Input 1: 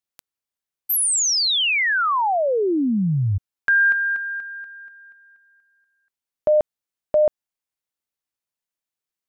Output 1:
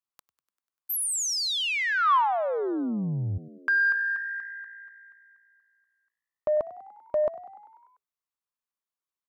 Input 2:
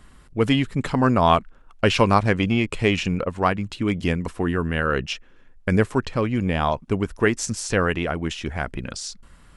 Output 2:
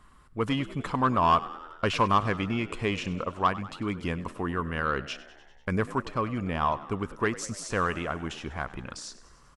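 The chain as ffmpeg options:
ffmpeg -i in.wav -filter_complex "[0:a]equalizer=frequency=1100:width_type=o:width=0.62:gain=10.5,asoftclip=type=tanh:threshold=-5dB,asplit=2[link_01][link_02];[link_02]asplit=7[link_03][link_04][link_05][link_06][link_07][link_08][link_09];[link_03]adelay=98,afreqshift=57,volume=-17.5dB[link_10];[link_04]adelay=196,afreqshift=114,volume=-21.2dB[link_11];[link_05]adelay=294,afreqshift=171,volume=-25dB[link_12];[link_06]adelay=392,afreqshift=228,volume=-28.7dB[link_13];[link_07]adelay=490,afreqshift=285,volume=-32.5dB[link_14];[link_08]adelay=588,afreqshift=342,volume=-36.2dB[link_15];[link_09]adelay=686,afreqshift=399,volume=-40dB[link_16];[link_10][link_11][link_12][link_13][link_14][link_15][link_16]amix=inputs=7:normalize=0[link_17];[link_01][link_17]amix=inputs=2:normalize=0,volume=-8.5dB" out.wav

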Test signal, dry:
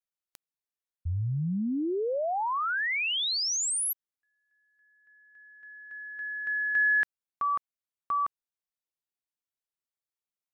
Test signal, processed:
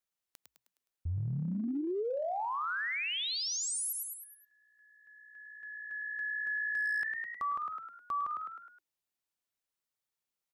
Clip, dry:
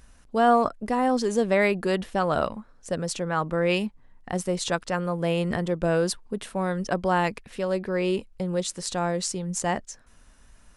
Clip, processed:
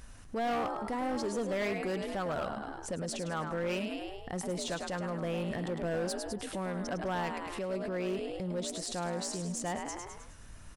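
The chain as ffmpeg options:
ffmpeg -i in.wav -filter_complex "[0:a]asplit=6[link_01][link_02][link_03][link_04][link_05][link_06];[link_02]adelay=104,afreqshift=59,volume=-8.5dB[link_07];[link_03]adelay=208,afreqshift=118,volume=-15.2dB[link_08];[link_04]adelay=312,afreqshift=177,volume=-22dB[link_09];[link_05]adelay=416,afreqshift=236,volume=-28.7dB[link_10];[link_06]adelay=520,afreqshift=295,volume=-35.5dB[link_11];[link_01][link_07][link_08][link_09][link_10][link_11]amix=inputs=6:normalize=0,asoftclip=type=hard:threshold=-19.5dB,acompressor=threshold=-35dB:ratio=4:attack=0.16:release=108:knee=6:detection=peak,volume=2.5dB" out.wav

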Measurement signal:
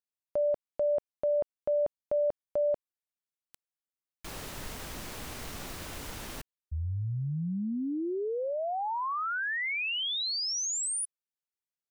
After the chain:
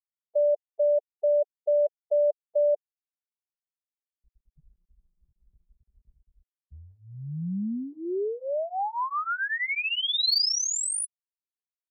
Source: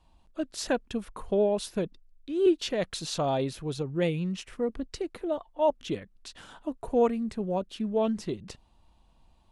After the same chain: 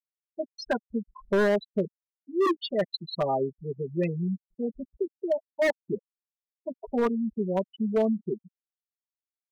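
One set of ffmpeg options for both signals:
ffmpeg -i in.wav -af "afftfilt=real='re*gte(hypot(re,im),0.0708)':imag='im*gte(hypot(re,im),0.0708)':win_size=1024:overlap=0.75,highpass=frequency=190:poles=1,equalizer=frequency=4500:width_type=o:width=0.5:gain=7,aecho=1:1:5:0.96,aeval=exprs='0.133*(abs(mod(val(0)/0.133+3,4)-2)-1)':channel_layout=same" out.wav

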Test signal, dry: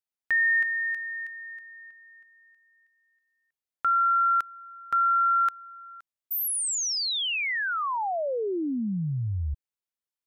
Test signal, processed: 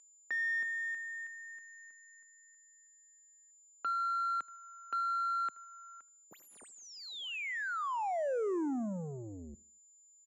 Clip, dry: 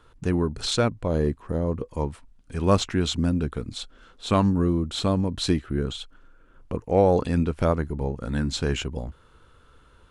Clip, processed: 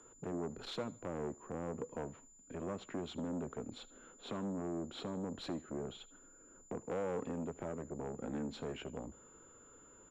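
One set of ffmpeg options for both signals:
ffmpeg -i in.wav -filter_complex "[0:a]acrossover=split=140|3800[link_01][link_02][link_03];[link_03]adynamicsmooth=sensitivity=5.5:basefreq=7700[link_04];[link_01][link_02][link_04]amix=inputs=3:normalize=0,tiltshelf=frequency=640:gain=7,acompressor=threshold=-19dB:ratio=16:attack=3.6:release=568:knee=6:detection=peak,aeval=exprs='val(0)+0.00794*sin(2*PI*7100*n/s)':channel_layout=same,asoftclip=type=tanh:threshold=-27.5dB,acrossover=split=200 3500:gain=0.0794 1 0.141[link_05][link_06][link_07];[link_05][link_06][link_07]amix=inputs=3:normalize=0,aecho=1:1:77|154|231:0.0794|0.0294|0.0109,aresample=32000,aresample=44100,volume=-2.5dB" out.wav

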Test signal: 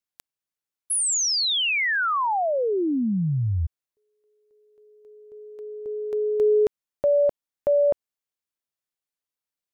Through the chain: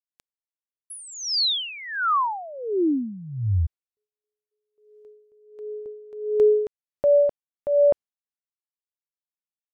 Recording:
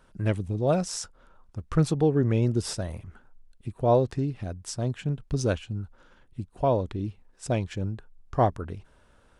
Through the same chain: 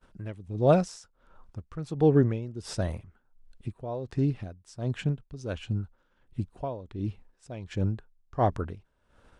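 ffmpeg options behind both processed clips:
ffmpeg -i in.wav -af "highshelf=frequency=10000:gain=-10.5,agate=range=-26dB:threshold=-56dB:ratio=3:release=185:detection=rms,aeval=exprs='val(0)*pow(10,-18*(0.5-0.5*cos(2*PI*1.4*n/s))/20)':channel_layout=same,volume=3.5dB" out.wav

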